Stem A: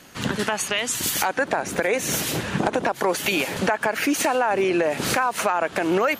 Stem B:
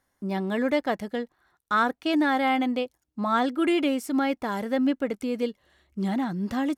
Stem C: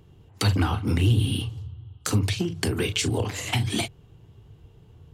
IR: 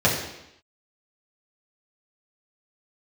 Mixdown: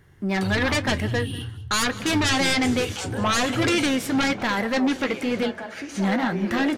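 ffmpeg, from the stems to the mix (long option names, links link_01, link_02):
-filter_complex "[0:a]lowpass=7200,alimiter=limit=-15dB:level=0:latency=1:release=176,adelay=1750,volume=-8dB,asplit=2[link_01][link_02];[link_02]volume=-19.5dB[link_03];[1:a]equalizer=frequency=1900:width_type=o:width=1.3:gain=11.5,aeval=exprs='0.266*sin(PI/2*2.51*val(0)/0.266)':channel_layout=same,volume=-3dB,asplit=2[link_04][link_05];[link_05]volume=-19.5dB[link_06];[2:a]alimiter=limit=-20dB:level=0:latency=1:release=18,volume=1.5dB,asplit=2[link_07][link_08];[link_08]volume=-17.5dB[link_09];[3:a]atrim=start_sample=2205[link_10];[link_03][link_10]afir=irnorm=-1:irlink=0[link_11];[link_06][link_09]amix=inputs=2:normalize=0,aecho=0:1:192:1[link_12];[link_01][link_04][link_07][link_11][link_12]amix=inputs=5:normalize=0,flanger=delay=7.7:depth=4.3:regen=-63:speed=1.1:shape=triangular"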